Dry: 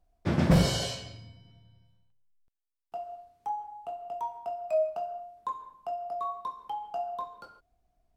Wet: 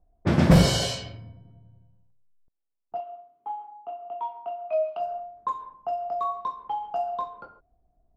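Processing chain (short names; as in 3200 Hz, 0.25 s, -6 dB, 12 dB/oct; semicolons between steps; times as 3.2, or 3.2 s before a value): 3–5 speaker cabinet 330–4000 Hz, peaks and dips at 520 Hz -9 dB, 820 Hz -5 dB, 1700 Hz -7 dB, 3100 Hz +6 dB; low-pass opened by the level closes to 710 Hz, open at -28.5 dBFS; gain +5.5 dB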